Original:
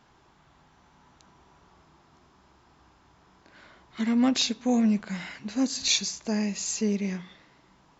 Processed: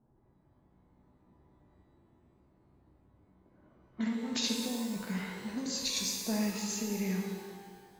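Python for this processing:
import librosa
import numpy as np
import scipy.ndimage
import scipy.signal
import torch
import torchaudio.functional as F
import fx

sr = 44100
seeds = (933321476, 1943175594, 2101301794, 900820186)

y = fx.env_lowpass(x, sr, base_hz=400.0, full_db=-25.0)
y = fx.over_compress(y, sr, threshold_db=-26.0, ratio=-0.5)
y = fx.rev_shimmer(y, sr, seeds[0], rt60_s=1.6, semitones=12, shimmer_db=-8, drr_db=0.5)
y = F.gain(torch.from_numpy(y), -8.0).numpy()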